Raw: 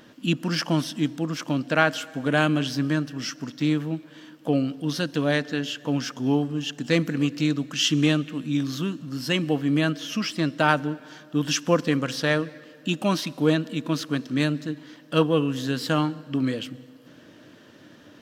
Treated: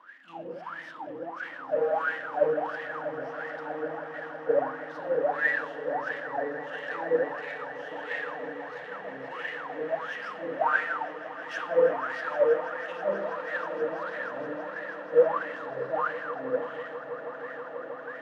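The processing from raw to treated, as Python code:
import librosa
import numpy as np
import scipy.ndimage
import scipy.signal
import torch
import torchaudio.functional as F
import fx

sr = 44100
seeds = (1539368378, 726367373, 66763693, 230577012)

y = fx.rev_spring(x, sr, rt60_s=1.0, pass_ms=(30, 45), chirp_ms=30, drr_db=-3.0)
y = fx.power_curve(y, sr, exponent=0.5)
y = fx.wah_lfo(y, sr, hz=1.5, low_hz=480.0, high_hz=1900.0, q=22.0)
y = fx.echo_swell(y, sr, ms=161, loudest=8, wet_db=-16)
y = fx.band_widen(y, sr, depth_pct=40)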